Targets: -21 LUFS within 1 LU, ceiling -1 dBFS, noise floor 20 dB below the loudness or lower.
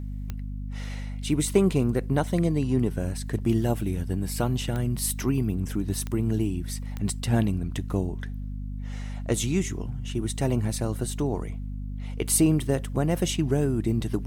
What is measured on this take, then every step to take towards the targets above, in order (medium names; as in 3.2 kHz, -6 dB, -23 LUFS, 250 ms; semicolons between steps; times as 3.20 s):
clicks found 4; hum 50 Hz; highest harmonic 250 Hz; hum level -31 dBFS; loudness -27.5 LUFS; peak level -8.5 dBFS; loudness target -21.0 LUFS
-> de-click; hum notches 50/100/150/200/250 Hz; trim +6.5 dB